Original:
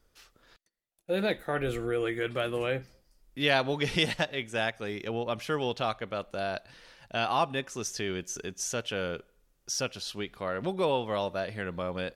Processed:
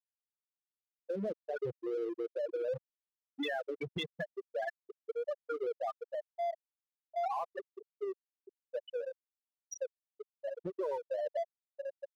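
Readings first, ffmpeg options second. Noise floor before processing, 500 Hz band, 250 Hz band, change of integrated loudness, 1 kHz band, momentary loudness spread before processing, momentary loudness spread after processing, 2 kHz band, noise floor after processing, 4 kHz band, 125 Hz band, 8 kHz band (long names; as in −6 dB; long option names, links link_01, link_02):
−70 dBFS, −5.5 dB, −10.5 dB, −8.0 dB, −8.5 dB, 9 LU, 11 LU, −14.0 dB, below −85 dBFS, −16.0 dB, −15.5 dB, below −15 dB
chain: -filter_complex "[0:a]asplit=2[link_01][link_02];[link_02]aecho=0:1:438|876|1314|1752:0.126|0.0541|0.0233|0.01[link_03];[link_01][link_03]amix=inputs=2:normalize=0,afftfilt=real='re*gte(hypot(re,im),0.2)':imag='im*gte(hypot(re,im),0.2)':win_size=1024:overlap=0.75,asplit=2[link_04][link_05];[link_05]aeval=exprs='sgn(val(0))*max(abs(val(0))-0.00668,0)':channel_layout=same,volume=-3dB[link_06];[link_04][link_06]amix=inputs=2:normalize=0,acrossover=split=190|3000[link_07][link_08][link_09];[link_08]acompressor=threshold=-28dB:ratio=2[link_10];[link_07][link_10][link_09]amix=inputs=3:normalize=0,equalizer=frequency=7800:width_type=o:width=0.39:gain=-4,asoftclip=type=tanh:threshold=-16dB,acompressor=threshold=-29dB:ratio=6,lowshelf=frequency=300:gain=-8,alimiter=level_in=5.5dB:limit=-24dB:level=0:latency=1:release=85,volume=-5.5dB,volume=1dB"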